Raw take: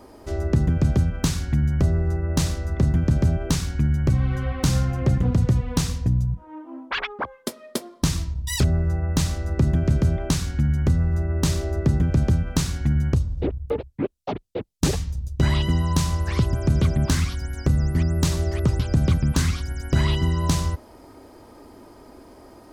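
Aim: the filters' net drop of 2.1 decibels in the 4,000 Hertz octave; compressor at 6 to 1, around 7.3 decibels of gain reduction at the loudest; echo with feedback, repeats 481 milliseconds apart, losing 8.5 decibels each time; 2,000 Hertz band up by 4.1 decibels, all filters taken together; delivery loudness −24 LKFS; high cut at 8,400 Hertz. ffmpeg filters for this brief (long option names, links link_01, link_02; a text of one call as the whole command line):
ffmpeg -i in.wav -af "lowpass=8400,equalizer=frequency=2000:width_type=o:gain=6,equalizer=frequency=4000:width_type=o:gain=-4.5,acompressor=threshold=-22dB:ratio=6,aecho=1:1:481|962|1443|1924:0.376|0.143|0.0543|0.0206,volume=3.5dB" out.wav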